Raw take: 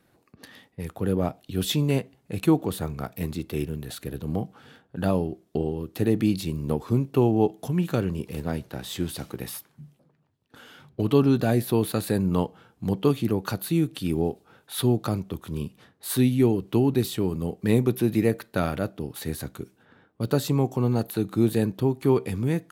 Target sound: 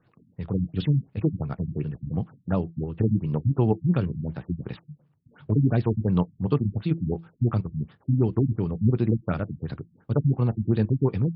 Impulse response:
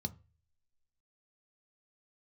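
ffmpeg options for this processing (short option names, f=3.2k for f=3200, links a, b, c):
-filter_complex "[0:a]acrossover=split=8300[a][b];[b]acompressor=threshold=-48dB:ratio=4:attack=1:release=60[c];[a][c]amix=inputs=2:normalize=0,bandreject=f=166.2:t=h:w=4,bandreject=f=332.4:t=h:w=4,asplit=2[d][e];[1:a]atrim=start_sample=2205,atrim=end_sample=3969,highshelf=f=4.3k:g=-10.5[f];[e][f]afir=irnorm=-1:irlink=0,volume=-13dB[g];[d][g]amix=inputs=2:normalize=0,atempo=2,afftfilt=real='re*lt(b*sr/1024,250*pow(5500/250,0.5+0.5*sin(2*PI*2.8*pts/sr)))':imag='im*lt(b*sr/1024,250*pow(5500/250,0.5+0.5*sin(2*PI*2.8*pts/sr)))':win_size=1024:overlap=0.75"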